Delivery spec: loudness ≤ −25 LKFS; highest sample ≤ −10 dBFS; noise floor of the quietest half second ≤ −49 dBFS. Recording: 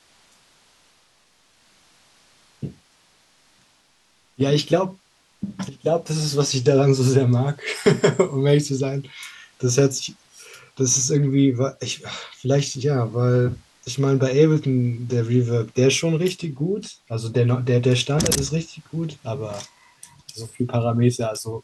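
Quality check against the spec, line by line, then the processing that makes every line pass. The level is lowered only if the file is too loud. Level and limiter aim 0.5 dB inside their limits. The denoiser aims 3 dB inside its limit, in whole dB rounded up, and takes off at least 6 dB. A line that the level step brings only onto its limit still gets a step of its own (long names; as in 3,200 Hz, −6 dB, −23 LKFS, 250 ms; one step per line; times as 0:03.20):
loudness −21.0 LKFS: out of spec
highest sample −4.0 dBFS: out of spec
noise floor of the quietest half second −60 dBFS: in spec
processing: level −4.5 dB
brickwall limiter −10.5 dBFS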